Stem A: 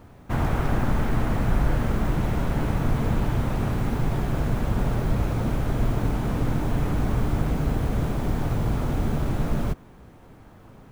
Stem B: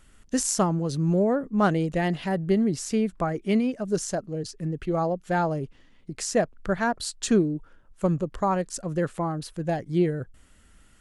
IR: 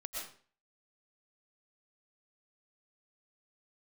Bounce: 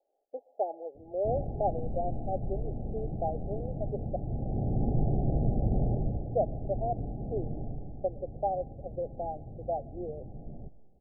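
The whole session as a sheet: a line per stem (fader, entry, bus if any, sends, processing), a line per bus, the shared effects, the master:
7.61 s -3 dB -> 7.96 s -11.5 dB, 0.95 s, send -23.5 dB, vocal rider 0.5 s; auto duck -9 dB, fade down 0.35 s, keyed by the second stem
-1.5 dB, 0.00 s, muted 4.16–6.27, send -23 dB, inverse Chebyshev high-pass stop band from 200 Hz, stop band 50 dB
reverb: on, RT60 0.45 s, pre-delay 80 ms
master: Chebyshev low-pass 820 Hz, order 10

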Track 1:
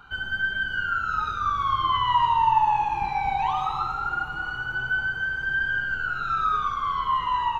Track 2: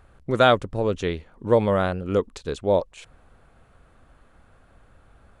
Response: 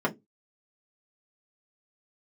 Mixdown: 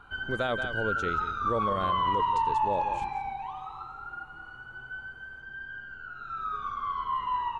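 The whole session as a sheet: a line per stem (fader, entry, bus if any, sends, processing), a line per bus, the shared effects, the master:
2.94 s -4 dB -> 3.46 s -14.5 dB -> 6.14 s -14.5 dB -> 6.72 s -8 dB, 0.00 s, send -21.5 dB, no echo send, high shelf 3500 Hz -8 dB
-8.5 dB, 0.00 s, no send, echo send -14 dB, dry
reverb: on, RT60 0.20 s, pre-delay 3 ms
echo: echo 0.178 s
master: limiter -19 dBFS, peak gain reduction 8 dB

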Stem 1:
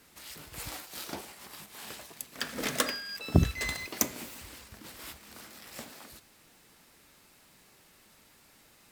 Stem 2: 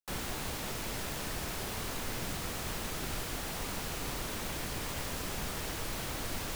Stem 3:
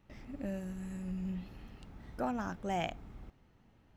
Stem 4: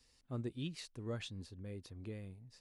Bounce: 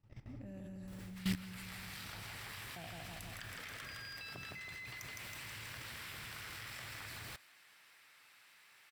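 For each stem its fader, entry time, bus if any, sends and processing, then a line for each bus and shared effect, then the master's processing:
0.0 dB, 1.00 s, no send, echo send -5 dB, HPF 1100 Hz 6 dB/oct; bell 1900 Hz +13 dB 2.3 oct; compressor 4:1, threshold -38 dBFS, peak gain reduction 18 dB
-14.0 dB, 0.80 s, no send, no echo send, HPF 44 Hz
-3.0 dB, 0.00 s, muted 2.2–2.76, no send, echo send -3.5 dB, dry
-18.0 dB, 0.00 s, no send, no echo send, dry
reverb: off
echo: feedback echo 0.161 s, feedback 56%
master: bell 110 Hz +14 dB 0.73 oct; notch 6600 Hz, Q 15; level quantiser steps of 16 dB

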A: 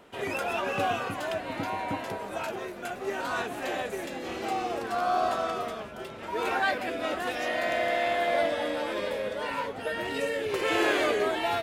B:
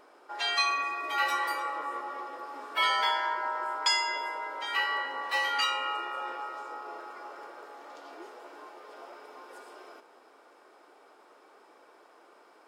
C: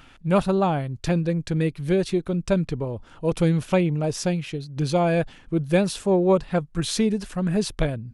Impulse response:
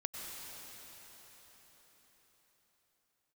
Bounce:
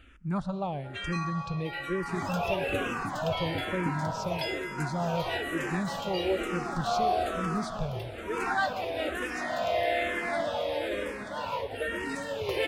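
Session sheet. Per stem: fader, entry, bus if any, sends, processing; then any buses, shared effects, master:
-1.0 dB, 1.95 s, no bus, send -9.5 dB, dry
-1.0 dB, 0.55 s, bus A, send -19.5 dB, dry
-5.5 dB, 0.00 s, bus A, send -15.5 dB, dry
bus A: 0.0 dB, high shelf 6800 Hz -10 dB; compressor 1.5:1, threshold -38 dBFS, peak gain reduction 7 dB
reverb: on, RT60 5.1 s, pre-delay 88 ms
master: bell 68 Hz +10.5 dB 1.1 oct; endless phaser -1.1 Hz

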